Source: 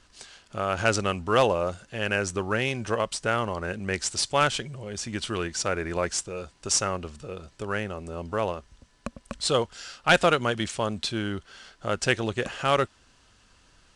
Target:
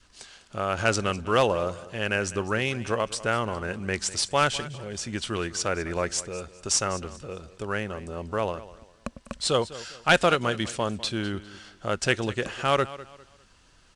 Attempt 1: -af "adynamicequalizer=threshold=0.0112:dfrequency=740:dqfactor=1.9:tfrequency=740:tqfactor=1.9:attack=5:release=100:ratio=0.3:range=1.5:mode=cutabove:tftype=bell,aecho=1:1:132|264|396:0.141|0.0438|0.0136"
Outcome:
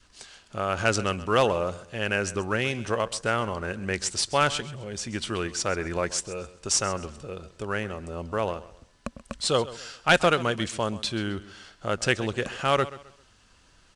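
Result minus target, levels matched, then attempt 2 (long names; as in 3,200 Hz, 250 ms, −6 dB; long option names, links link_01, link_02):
echo 69 ms early
-af "adynamicequalizer=threshold=0.0112:dfrequency=740:dqfactor=1.9:tfrequency=740:tqfactor=1.9:attack=5:release=100:ratio=0.3:range=1.5:mode=cutabove:tftype=bell,aecho=1:1:201|402|603:0.141|0.0438|0.0136"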